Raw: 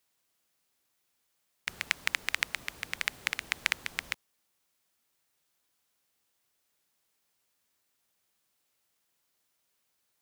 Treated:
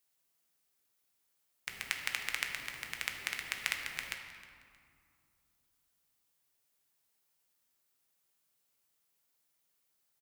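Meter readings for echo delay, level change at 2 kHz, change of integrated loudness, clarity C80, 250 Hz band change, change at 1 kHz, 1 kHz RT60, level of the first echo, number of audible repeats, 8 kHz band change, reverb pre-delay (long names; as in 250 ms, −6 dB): 313 ms, −4.5 dB, −4.5 dB, 6.0 dB, −4.5 dB, −4.5 dB, 2.4 s, −17.5 dB, 2, −2.5 dB, 7 ms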